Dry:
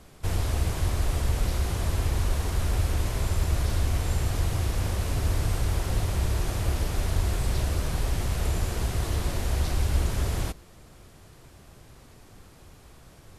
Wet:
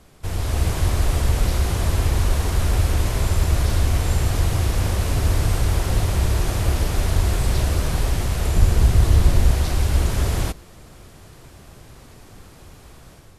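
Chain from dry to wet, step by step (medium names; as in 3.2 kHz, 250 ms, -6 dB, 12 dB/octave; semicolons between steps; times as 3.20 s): 8.56–9.51 s: bass shelf 190 Hz +9 dB; level rider gain up to 6.5 dB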